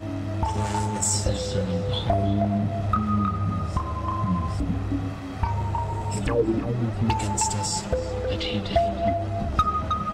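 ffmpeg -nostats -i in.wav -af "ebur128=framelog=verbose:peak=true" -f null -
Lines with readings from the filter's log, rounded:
Integrated loudness:
  I:         -25.6 LUFS
  Threshold: -35.6 LUFS
Loudness range:
  LRA:         2.2 LU
  Threshold: -45.7 LUFS
  LRA low:   -26.9 LUFS
  LRA high:  -24.7 LUFS
True peak:
  Peak:       -9.0 dBFS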